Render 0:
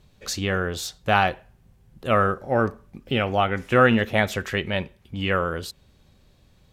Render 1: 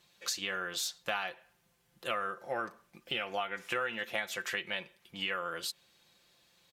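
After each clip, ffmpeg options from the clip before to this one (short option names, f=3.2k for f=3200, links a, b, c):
-af "highpass=f=1.5k:p=1,aecho=1:1:5.8:0.56,acompressor=threshold=-32dB:ratio=5"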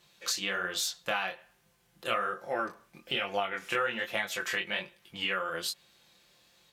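-af "flanger=delay=19.5:depth=7:speed=1.2,volume=6.5dB"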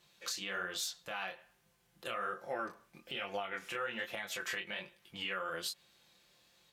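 -af "alimiter=limit=-23.5dB:level=0:latency=1:release=127,volume=-4dB"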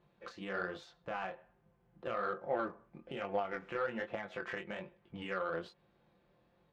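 -af "adynamicsmooth=sensitivity=1:basefreq=1k,volume=6dB"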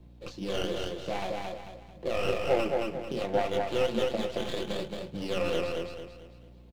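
-filter_complex "[0:a]aecho=1:1:222|444|666|888|1110:0.708|0.262|0.0969|0.0359|0.0133,aeval=exprs='val(0)+0.001*(sin(2*PI*60*n/s)+sin(2*PI*2*60*n/s)/2+sin(2*PI*3*60*n/s)/3+sin(2*PI*4*60*n/s)/4+sin(2*PI*5*60*n/s)/5)':c=same,acrossover=split=130|910|3000[a][b][c][d];[c]aeval=exprs='abs(val(0))':c=same[e];[a][b][e][d]amix=inputs=4:normalize=0,volume=9dB"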